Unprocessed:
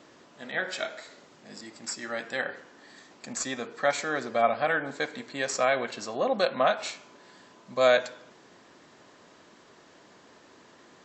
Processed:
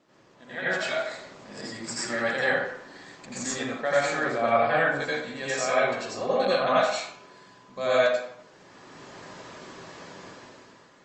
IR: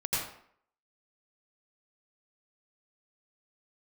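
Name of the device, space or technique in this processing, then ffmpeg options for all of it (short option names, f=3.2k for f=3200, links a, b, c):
speakerphone in a meeting room: -filter_complex "[1:a]atrim=start_sample=2205[a];[0:a][a]afir=irnorm=-1:irlink=0,dynaudnorm=f=110:g=13:m=13.5dB,volume=-9dB" -ar 48000 -c:a libopus -b:a 32k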